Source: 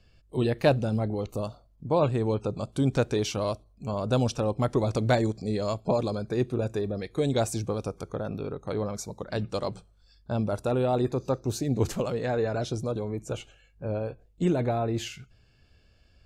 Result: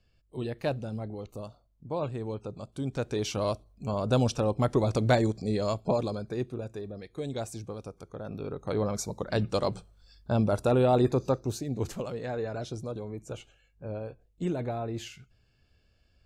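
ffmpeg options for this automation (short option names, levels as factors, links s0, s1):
-af "volume=3.76,afade=t=in:st=2.94:d=0.54:silence=0.375837,afade=t=out:st=5.68:d=0.97:silence=0.354813,afade=t=in:st=8.13:d=0.81:silence=0.266073,afade=t=out:st=11.16:d=0.48:silence=0.375837"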